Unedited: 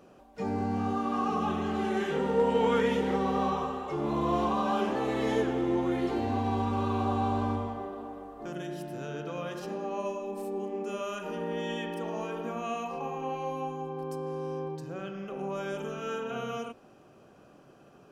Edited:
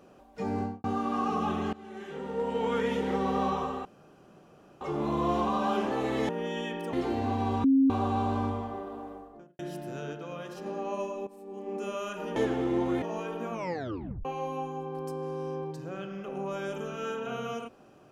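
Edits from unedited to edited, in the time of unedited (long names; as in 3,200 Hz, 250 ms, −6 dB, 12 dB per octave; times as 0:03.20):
0:00.58–0:00.84: fade out and dull
0:01.73–0:03.30: fade in, from −20.5 dB
0:03.85: splice in room tone 0.96 s
0:05.33–0:05.99: swap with 0:11.42–0:12.06
0:06.70–0:06.96: beep over 269 Hz −18 dBFS
0:08.14–0:08.65: fade out and dull
0:09.19–0:09.72: clip gain −3.5 dB
0:10.33–0:10.81: fade in quadratic, from −14.5 dB
0:12.56: tape stop 0.73 s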